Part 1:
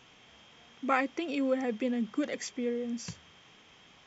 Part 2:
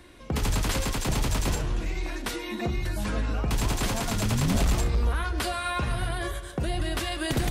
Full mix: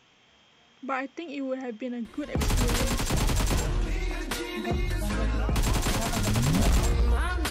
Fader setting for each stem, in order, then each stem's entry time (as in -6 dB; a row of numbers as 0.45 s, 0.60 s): -2.5 dB, +0.5 dB; 0.00 s, 2.05 s